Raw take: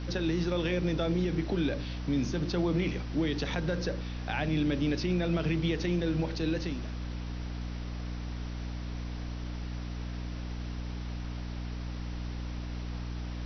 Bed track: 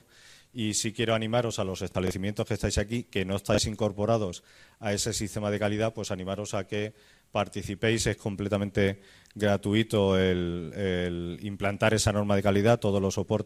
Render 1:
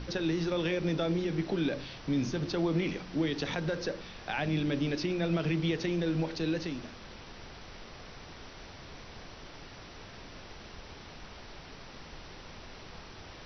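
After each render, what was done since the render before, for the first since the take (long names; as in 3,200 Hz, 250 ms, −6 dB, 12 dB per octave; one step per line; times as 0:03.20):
mains-hum notches 60/120/180/240/300 Hz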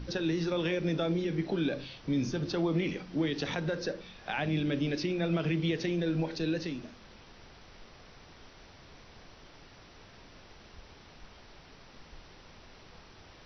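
noise reduction from a noise print 6 dB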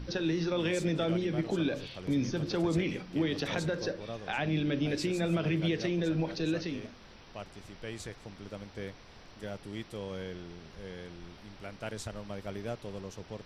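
mix in bed track −16 dB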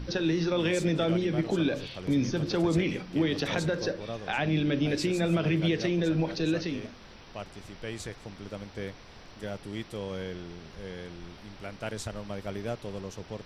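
level +3.5 dB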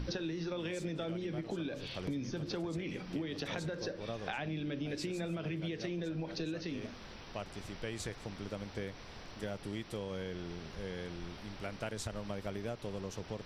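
downward compressor 10 to 1, threshold −35 dBFS, peak gain reduction 14 dB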